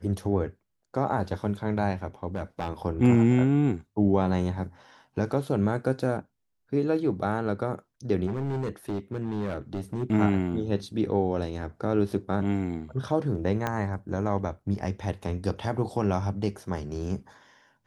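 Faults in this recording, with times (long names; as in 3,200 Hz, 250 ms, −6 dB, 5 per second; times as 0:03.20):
0:02.34–0:02.70: clipping −24.5 dBFS
0:08.26–0:10.04: clipping −26 dBFS
0:13.67: click −14 dBFS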